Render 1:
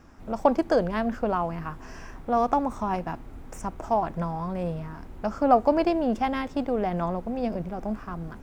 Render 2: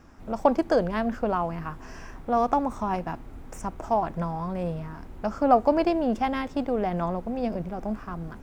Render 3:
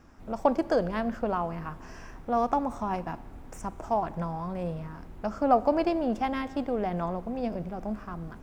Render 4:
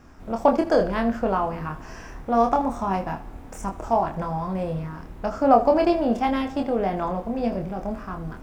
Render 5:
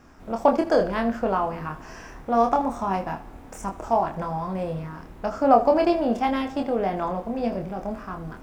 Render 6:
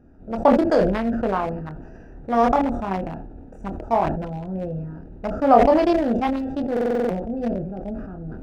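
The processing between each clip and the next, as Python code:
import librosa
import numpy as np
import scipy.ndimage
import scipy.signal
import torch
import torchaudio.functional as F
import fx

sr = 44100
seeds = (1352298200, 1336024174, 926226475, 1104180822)

y1 = x
y2 = fx.rev_schroeder(y1, sr, rt60_s=1.7, comb_ms=30, drr_db=18.0)
y2 = y2 * 10.0 ** (-3.0 / 20.0)
y3 = fx.room_early_taps(y2, sr, ms=(26, 80), db=(-4.5, -15.0))
y3 = y3 * 10.0 ** (4.5 / 20.0)
y4 = fx.low_shelf(y3, sr, hz=150.0, db=-5.5)
y5 = fx.wiener(y4, sr, points=41)
y5 = fx.buffer_glitch(y5, sr, at_s=(6.72,), block=2048, repeats=7)
y5 = fx.sustainer(y5, sr, db_per_s=44.0)
y5 = y5 * 10.0 ** (2.0 / 20.0)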